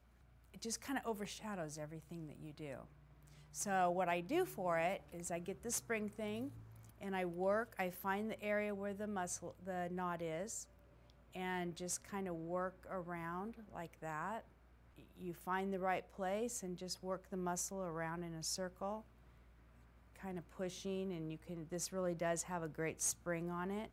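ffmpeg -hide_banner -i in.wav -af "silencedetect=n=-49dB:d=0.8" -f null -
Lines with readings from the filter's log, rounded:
silence_start: 19.01
silence_end: 20.16 | silence_duration: 1.14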